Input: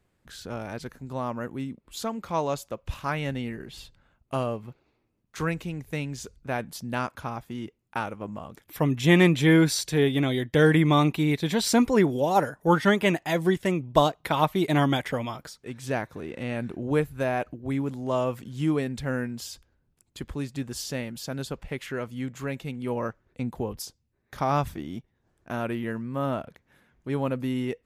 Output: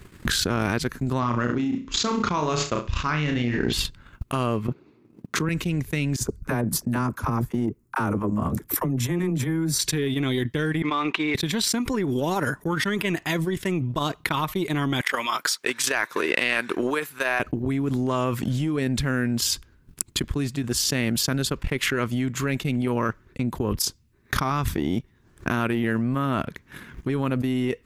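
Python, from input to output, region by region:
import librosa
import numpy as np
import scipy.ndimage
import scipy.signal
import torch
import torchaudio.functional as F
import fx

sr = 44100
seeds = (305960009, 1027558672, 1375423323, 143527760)

y = fx.chain(x, sr, fx.room_flutter(wall_m=5.7, rt60_s=0.37),
    fx.resample_bad(factor=3, down='none', up='filtered'), at=(1.19, 3.73))
y = fx.chain(y, sr, fx.highpass(hz=180.0, slope=12),
    fx.tilt_shelf(db=8.0, hz=810.0), at=(4.68, 5.49))
y = fx.chain(y, sr, fx.peak_eq(hz=3100.0, db=-14.5, octaves=1.6),
    fx.dispersion(late='lows', ms=49.0, hz=400.0), at=(6.16, 9.79))
y = fx.chain(y, sr, fx.dead_time(dead_ms=0.056),
    fx.bandpass_edges(low_hz=500.0, high_hz=2900.0), at=(10.82, 11.35))
y = fx.chain(y, sr, fx.transient(attack_db=6, sustain_db=2),
    fx.highpass(hz=650.0, slope=12), at=(15.01, 17.4))
y = fx.band_shelf(y, sr, hz=640.0, db=-8.5, octaves=1.0)
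y = fx.transient(y, sr, attack_db=12, sustain_db=-11)
y = fx.env_flatten(y, sr, amount_pct=100)
y = F.gain(torch.from_numpy(y), -16.5).numpy()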